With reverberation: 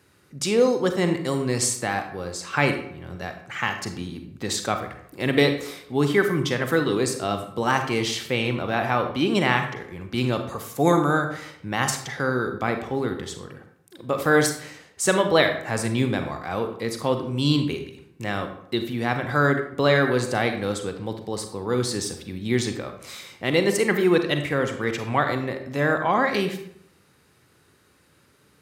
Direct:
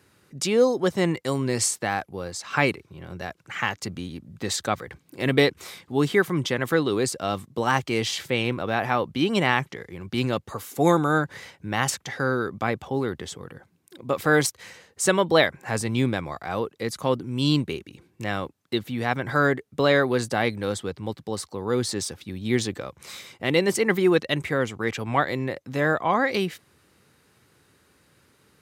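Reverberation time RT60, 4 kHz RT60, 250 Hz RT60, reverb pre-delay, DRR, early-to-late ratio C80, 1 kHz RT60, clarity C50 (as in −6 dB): 0.70 s, 0.45 s, 0.70 s, 34 ms, 6.0 dB, 11.0 dB, 0.70 s, 8.0 dB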